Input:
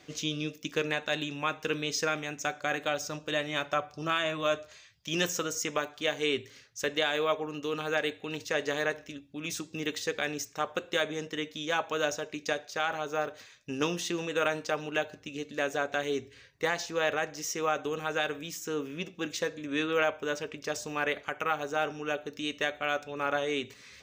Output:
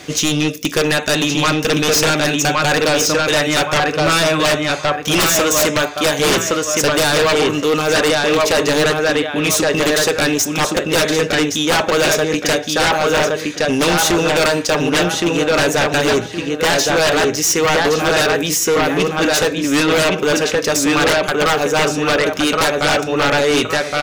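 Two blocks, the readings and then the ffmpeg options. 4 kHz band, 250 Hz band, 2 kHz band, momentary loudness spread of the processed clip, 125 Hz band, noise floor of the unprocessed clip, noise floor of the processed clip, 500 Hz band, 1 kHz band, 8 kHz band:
+18.0 dB, +18.5 dB, +15.5 dB, 3 LU, +19.5 dB, −56 dBFS, −25 dBFS, +16.5 dB, +15.5 dB, +21.0 dB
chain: -filter_complex "[0:a]equalizer=frequency=11000:width_type=o:width=0.67:gain=11.5,asplit=2[link_01][link_02];[link_02]adelay=1118,lowpass=frequency=3400:poles=1,volume=-3dB,asplit=2[link_03][link_04];[link_04]adelay=1118,lowpass=frequency=3400:poles=1,volume=0.29,asplit=2[link_05][link_06];[link_06]adelay=1118,lowpass=frequency=3400:poles=1,volume=0.29,asplit=2[link_07][link_08];[link_08]adelay=1118,lowpass=frequency=3400:poles=1,volume=0.29[link_09];[link_01][link_03][link_05][link_07][link_09]amix=inputs=5:normalize=0,aeval=exprs='0.299*sin(PI/2*6.31*val(0)/0.299)':channel_layout=same"

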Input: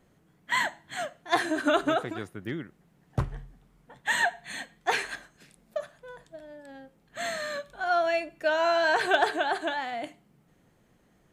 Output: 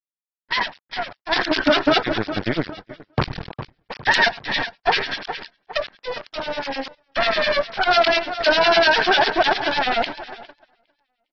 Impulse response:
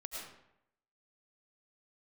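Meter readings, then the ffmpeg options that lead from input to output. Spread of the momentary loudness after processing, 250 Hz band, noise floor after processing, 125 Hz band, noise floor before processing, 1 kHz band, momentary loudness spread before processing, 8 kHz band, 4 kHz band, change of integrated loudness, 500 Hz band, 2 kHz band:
16 LU, +8.5 dB, below −85 dBFS, +6.5 dB, −65 dBFS, +8.0 dB, 22 LU, −1.0 dB, +14.0 dB, +8.5 dB, +8.0 dB, +8.5 dB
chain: -filter_complex "[0:a]bandreject=frequency=60:width_type=h:width=6,bandreject=frequency=120:width_type=h:width=6,bandreject=frequency=180:width_type=h:width=6,aresample=11025,acrusher=bits=5:dc=4:mix=0:aa=0.000001,aresample=44100,acrossover=split=1900[link_01][link_02];[link_01]aeval=exprs='val(0)*(1-1/2+1/2*cos(2*PI*10*n/s))':channel_layout=same[link_03];[link_02]aeval=exprs='val(0)*(1-1/2-1/2*cos(2*PI*10*n/s))':channel_layout=same[link_04];[link_03][link_04]amix=inputs=2:normalize=0,asplit=2[link_05][link_06];[link_06]acompressor=threshold=-43dB:ratio=4,volume=2dB[link_07];[link_05][link_07]amix=inputs=2:normalize=0,lowshelf=frequency=91:gain=-10,bandreject=frequency=1200:width=24,aecho=1:1:407|814|1221:0.1|0.041|0.0168,dynaudnorm=framelen=120:gausssize=21:maxgain=16dB,agate=range=-18dB:threshold=-42dB:ratio=16:detection=peak,alimiter=limit=-13.5dB:level=0:latency=1:release=92,aeval=exprs='0.211*(cos(1*acos(clip(val(0)/0.211,-1,1)))-cos(1*PI/2))+0.00376*(cos(2*acos(clip(val(0)/0.211,-1,1)))-cos(2*PI/2))':channel_layout=same,volume=5dB" -ar 48000 -c:a aac -b:a 24k

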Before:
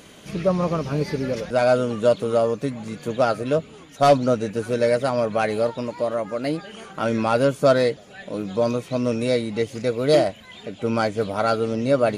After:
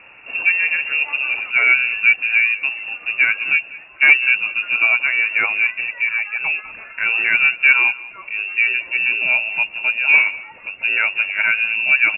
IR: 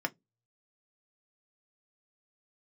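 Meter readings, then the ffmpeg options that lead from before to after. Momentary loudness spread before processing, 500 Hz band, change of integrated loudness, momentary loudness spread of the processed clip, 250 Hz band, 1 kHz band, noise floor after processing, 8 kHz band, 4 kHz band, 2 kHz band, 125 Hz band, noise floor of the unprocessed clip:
10 LU, −22.5 dB, +7.0 dB, 10 LU, below −20 dB, −7.0 dB, −41 dBFS, below −40 dB, can't be measured, +20.5 dB, below −25 dB, −45 dBFS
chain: -af "lowpass=frequency=2500:width_type=q:width=0.5098,lowpass=frequency=2500:width_type=q:width=0.6013,lowpass=frequency=2500:width_type=q:width=0.9,lowpass=frequency=2500:width_type=q:width=2.563,afreqshift=-2900,aecho=1:1:194:0.112,volume=3.5dB"

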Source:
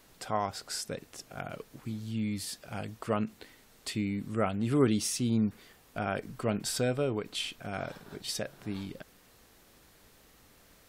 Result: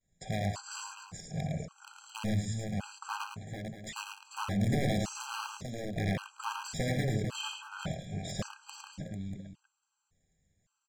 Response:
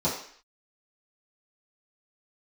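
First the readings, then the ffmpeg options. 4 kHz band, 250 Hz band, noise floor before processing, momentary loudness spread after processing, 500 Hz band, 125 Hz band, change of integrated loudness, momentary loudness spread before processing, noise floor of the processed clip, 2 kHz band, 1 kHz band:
−3.0 dB, −4.5 dB, −61 dBFS, 12 LU, −6.0 dB, +2.0 dB, −3.0 dB, 13 LU, −82 dBFS, +0.5 dB, −2.0 dB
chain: -filter_complex "[0:a]lowpass=frequency=7300:width_type=q:width=15,bandreject=frequency=60:width_type=h:width=6,bandreject=frequency=120:width_type=h:width=6,bandreject=frequency=180:width_type=h:width=6,bandreject=frequency=240:width_type=h:width=6,bandreject=frequency=300:width_type=h:width=6,bandreject=frequency=360:width_type=h:width=6,bandreject=frequency=420:width_type=h:width=6,agate=range=-33dB:threshold=-40dB:ratio=3:detection=peak,acrossover=split=4400[link_01][link_02];[link_02]acompressor=threshold=-35dB:ratio=4:attack=1:release=60[link_03];[link_01][link_03]amix=inputs=2:normalize=0,lowshelf=frequency=210:width_type=q:width=1.5:gain=8,acompressor=threshold=-28dB:ratio=2.5,aeval=exprs='(mod(15*val(0)+1,2)-1)/15':channel_layout=same,aemphasis=mode=reproduction:type=50fm,volume=26.5dB,asoftclip=hard,volume=-26.5dB,aecho=1:1:60|86|108|382|445|638:0.224|0.282|0.501|0.1|0.398|0.178,asplit=2[link_04][link_05];[1:a]atrim=start_sample=2205[link_06];[link_05][link_06]afir=irnorm=-1:irlink=0,volume=-26dB[link_07];[link_04][link_07]amix=inputs=2:normalize=0,afftfilt=real='re*gt(sin(2*PI*0.89*pts/sr)*(1-2*mod(floor(b*sr/1024/810),2)),0)':imag='im*gt(sin(2*PI*0.89*pts/sr)*(1-2*mod(floor(b*sr/1024/810),2)),0)':win_size=1024:overlap=0.75"

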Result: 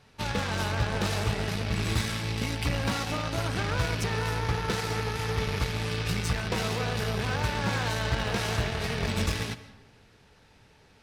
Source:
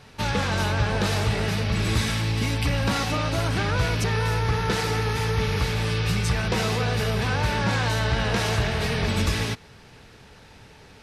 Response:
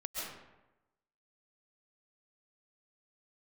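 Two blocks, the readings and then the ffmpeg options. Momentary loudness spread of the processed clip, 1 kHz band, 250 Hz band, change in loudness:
2 LU, −4.5 dB, −5.0 dB, −5.0 dB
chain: -filter_complex "[0:a]volume=16.5dB,asoftclip=hard,volume=-16.5dB,aeval=exprs='0.158*(cos(1*acos(clip(val(0)/0.158,-1,1)))-cos(1*PI/2))+0.0282*(cos(3*acos(clip(val(0)/0.158,-1,1)))-cos(3*PI/2))':channel_layout=same,asplit=2[link_01][link_02];[1:a]atrim=start_sample=2205[link_03];[link_02][link_03]afir=irnorm=-1:irlink=0,volume=-15dB[link_04];[link_01][link_04]amix=inputs=2:normalize=0,volume=-4dB"

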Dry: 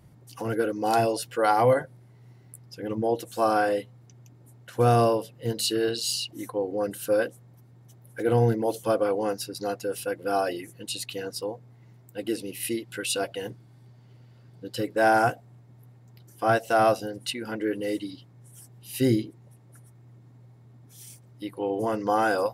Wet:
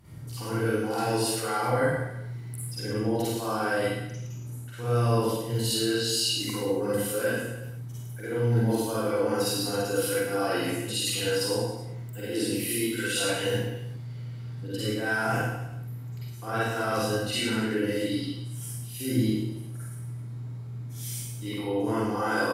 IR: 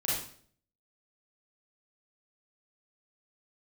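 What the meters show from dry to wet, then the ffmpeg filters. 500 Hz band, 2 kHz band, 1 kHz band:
−3.0 dB, +1.5 dB, −6.0 dB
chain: -filter_complex "[0:a]equalizer=frequency=560:width_type=o:width=0.98:gain=-6,areverse,acompressor=threshold=-35dB:ratio=6,areverse,aecho=1:1:50|110|182|268.4|372.1:0.631|0.398|0.251|0.158|0.1[link_01];[1:a]atrim=start_sample=2205,afade=type=out:start_time=0.2:duration=0.01,atrim=end_sample=9261,asetrate=34398,aresample=44100[link_02];[link_01][link_02]afir=irnorm=-1:irlink=0"

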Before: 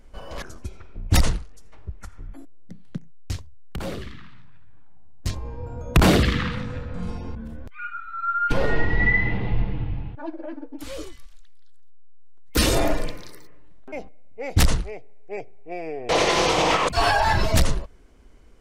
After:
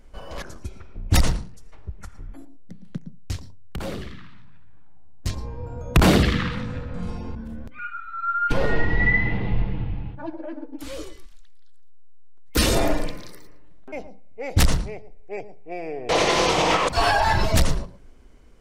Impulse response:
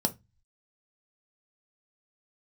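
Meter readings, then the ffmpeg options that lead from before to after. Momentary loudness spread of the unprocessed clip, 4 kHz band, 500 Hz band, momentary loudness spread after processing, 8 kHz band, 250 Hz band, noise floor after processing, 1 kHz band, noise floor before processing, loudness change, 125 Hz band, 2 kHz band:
20 LU, 0.0 dB, 0.0 dB, 20 LU, 0.0 dB, +1.0 dB, −42 dBFS, 0.0 dB, −42 dBFS, 0.0 dB, +0.5 dB, 0.0 dB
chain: -filter_complex "[0:a]asplit=2[link_01][link_02];[1:a]atrim=start_sample=2205,adelay=112[link_03];[link_02][link_03]afir=irnorm=-1:irlink=0,volume=-24dB[link_04];[link_01][link_04]amix=inputs=2:normalize=0"

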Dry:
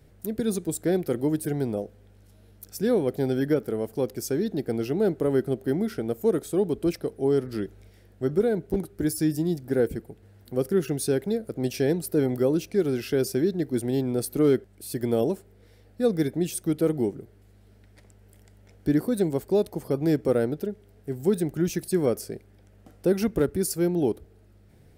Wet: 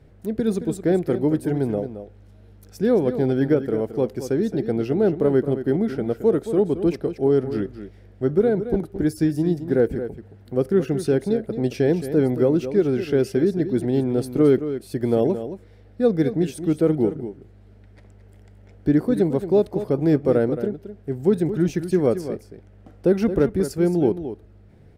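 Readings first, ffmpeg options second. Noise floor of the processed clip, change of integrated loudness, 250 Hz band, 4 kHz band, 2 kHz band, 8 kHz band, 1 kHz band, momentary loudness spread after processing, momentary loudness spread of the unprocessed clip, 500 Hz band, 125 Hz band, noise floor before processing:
−49 dBFS, +4.5 dB, +4.5 dB, −2.0 dB, +2.5 dB, can't be measured, +4.0 dB, 9 LU, 8 LU, +4.5 dB, +5.0 dB, −55 dBFS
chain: -filter_complex "[0:a]aemphasis=mode=reproduction:type=75kf,asplit=2[link_01][link_02];[link_02]aecho=0:1:221:0.282[link_03];[link_01][link_03]amix=inputs=2:normalize=0,volume=4.5dB"

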